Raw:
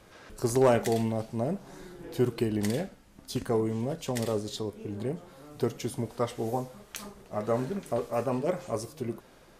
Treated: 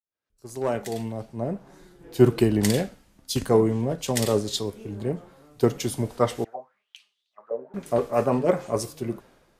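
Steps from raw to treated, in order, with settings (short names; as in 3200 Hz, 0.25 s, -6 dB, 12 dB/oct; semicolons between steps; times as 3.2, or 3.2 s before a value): opening faded in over 2.08 s; 6.44–7.74 auto-wah 490–4500 Hz, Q 6.1, down, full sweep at -24.5 dBFS; three-band expander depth 70%; gain +6 dB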